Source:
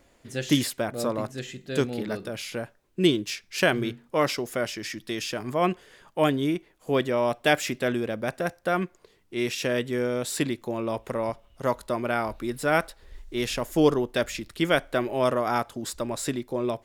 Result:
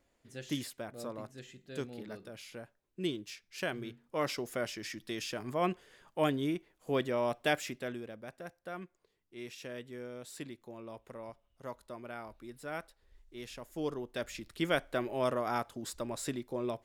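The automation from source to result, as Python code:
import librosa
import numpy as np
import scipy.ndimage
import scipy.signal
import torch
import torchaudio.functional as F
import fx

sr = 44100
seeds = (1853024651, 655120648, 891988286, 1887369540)

y = fx.gain(x, sr, db=fx.line((3.86, -14.0), (4.4, -7.5), (7.4, -7.5), (8.23, -17.5), (13.73, -17.5), (14.54, -8.0)))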